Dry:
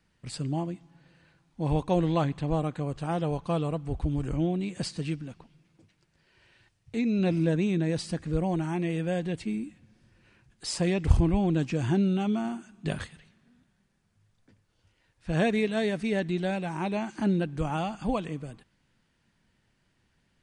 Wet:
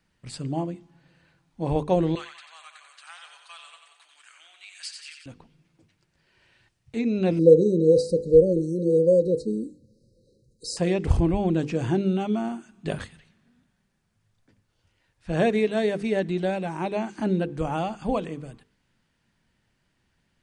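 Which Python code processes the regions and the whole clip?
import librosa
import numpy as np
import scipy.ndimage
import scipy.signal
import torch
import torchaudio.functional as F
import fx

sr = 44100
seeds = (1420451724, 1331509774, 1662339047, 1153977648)

y = fx.chain(x, sr, fx.highpass(hz=1500.0, slope=24),
    fx.echo_feedback(ms=90, feedback_pct=60, wet_db=-6.5), at=(2.15, 5.26))
y = fx.chain(y, sr, fx.brickwall_bandstop(low_hz=590.0, high_hz=3800.0),
    fx.peak_eq(hz=480.0, db=14.5, octaves=0.44), at=(7.39, 10.77))
y = fx.hum_notches(y, sr, base_hz=50, count=10)
y = fx.dynamic_eq(y, sr, hz=470.0, q=0.83, threshold_db=-39.0, ratio=4.0, max_db=6)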